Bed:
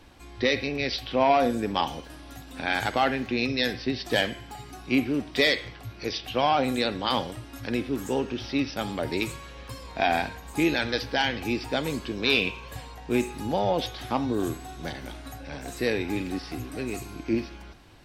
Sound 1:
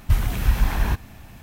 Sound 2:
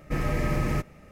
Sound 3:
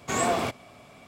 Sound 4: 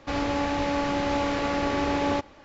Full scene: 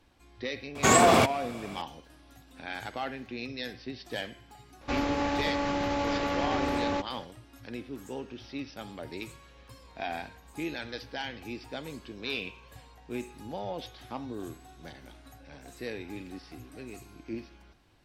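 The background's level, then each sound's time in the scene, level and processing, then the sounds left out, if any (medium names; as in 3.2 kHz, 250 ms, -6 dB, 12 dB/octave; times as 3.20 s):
bed -11.5 dB
0.75 s: add 3 -9 dB + loudness maximiser +17 dB
4.81 s: add 4 -1 dB + peak limiter -19.5 dBFS
not used: 1, 2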